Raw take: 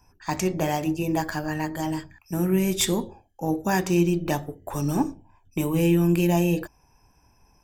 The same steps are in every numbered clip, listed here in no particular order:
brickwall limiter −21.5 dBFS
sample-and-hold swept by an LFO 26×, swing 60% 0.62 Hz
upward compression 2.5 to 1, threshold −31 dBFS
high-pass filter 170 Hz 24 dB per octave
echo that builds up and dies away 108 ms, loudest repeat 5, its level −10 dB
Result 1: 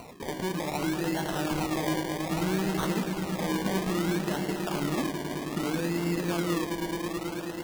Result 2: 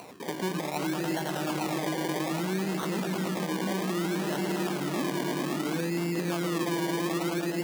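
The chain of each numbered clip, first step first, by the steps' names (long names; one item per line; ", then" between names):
brickwall limiter, then high-pass filter, then upward compression, then echo that builds up and dies away, then sample-and-hold swept by an LFO
echo that builds up and dies away, then brickwall limiter, then sample-and-hold swept by an LFO, then high-pass filter, then upward compression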